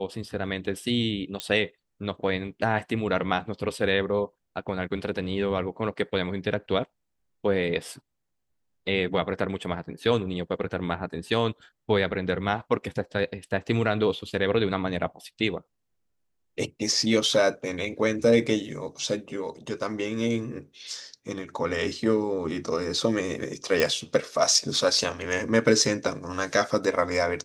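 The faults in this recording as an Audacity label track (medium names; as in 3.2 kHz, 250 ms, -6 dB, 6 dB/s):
1.400000	1.400000	pop -13 dBFS
23.800000	23.800000	pop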